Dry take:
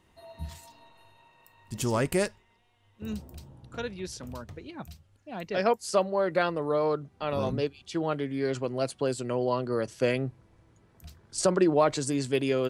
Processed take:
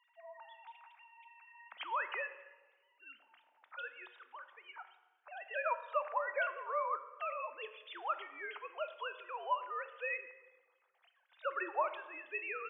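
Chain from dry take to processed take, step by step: formants replaced by sine waves; high-pass 900 Hz 24 dB/octave; compression, threshold -32 dBFS, peak gain reduction 8.5 dB; on a send: reverberation RT60 1.3 s, pre-delay 3 ms, DRR 9.5 dB; on the sum: trim +2 dB

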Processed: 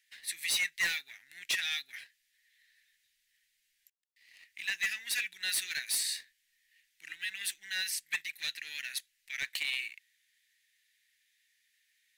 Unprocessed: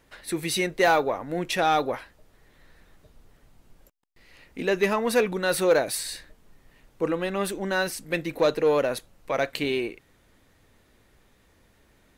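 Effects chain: elliptic high-pass 1.8 kHz, stop band 40 dB; waveshaping leveller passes 1; hard clipper -22.5 dBFS, distortion -15 dB; trim -3 dB

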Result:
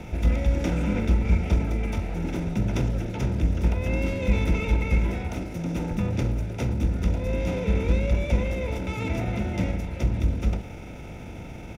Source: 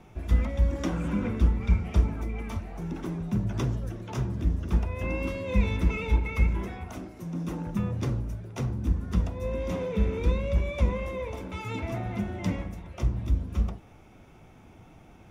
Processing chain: spectral levelling over time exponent 0.6; tempo 1.3×; Butterworth band-stop 1.1 kHz, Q 4.5

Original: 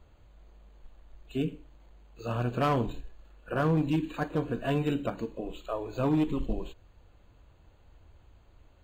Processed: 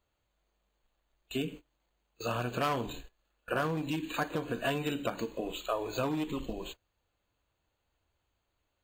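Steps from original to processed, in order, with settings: compression 16:1, threshold -30 dBFS, peak gain reduction 8.5 dB; tilt EQ +2.5 dB/octave; gate -50 dBFS, range -20 dB; trim +5 dB

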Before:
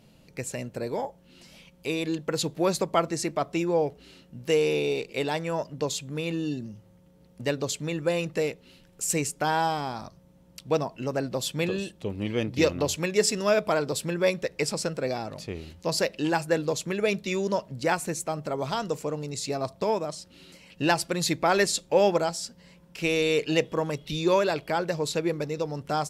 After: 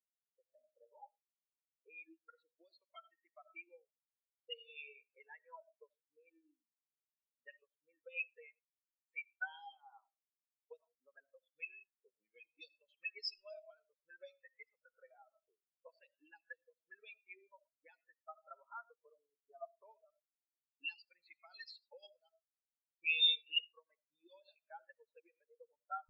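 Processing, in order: auto-wah 630–4500 Hz, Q 2.2, up, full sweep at -19 dBFS; one-sided clip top -31 dBFS, bottom -26.5 dBFS; on a send at -6 dB: reverberation RT60 0.60 s, pre-delay 40 ms; on the sum: spectral contrast expander 4:1; trim +2 dB

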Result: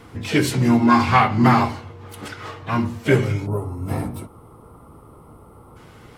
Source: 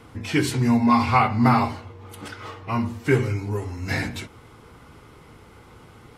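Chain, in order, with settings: harmony voices +5 st -14 dB, +7 st -13 dB; time-frequency box 3.47–5.76 s, 1.4–8 kHz -17 dB; trim +2.5 dB

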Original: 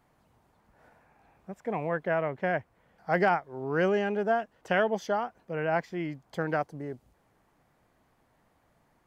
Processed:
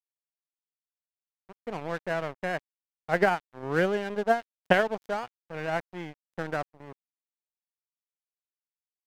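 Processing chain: 3.10–4.82 s: transient shaper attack +9 dB, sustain -3 dB; crossover distortion -36 dBFS; wow and flutter 18 cents

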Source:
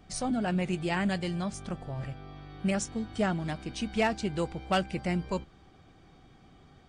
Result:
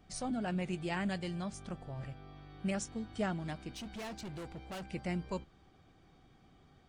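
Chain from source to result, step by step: 3.73–4.84 s: hard clipper -34.5 dBFS, distortion -8 dB; trim -6.5 dB

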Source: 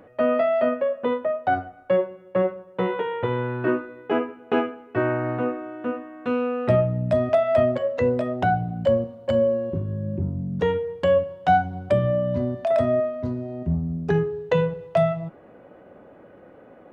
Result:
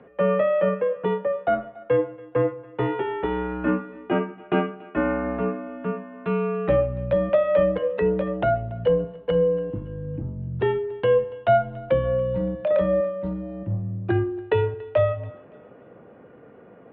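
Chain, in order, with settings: mistuned SSB -59 Hz 150–3500 Hz; thinning echo 284 ms, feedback 41%, level -21 dB

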